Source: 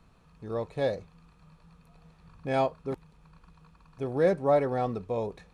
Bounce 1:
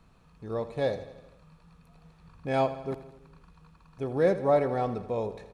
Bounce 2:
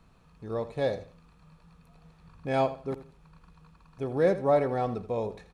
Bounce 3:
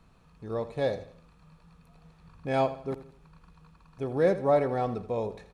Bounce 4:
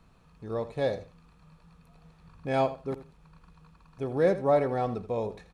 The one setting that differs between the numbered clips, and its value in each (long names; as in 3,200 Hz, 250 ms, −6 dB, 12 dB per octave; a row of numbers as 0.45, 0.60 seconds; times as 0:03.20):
repeating echo, feedback: 60, 25, 38, 17%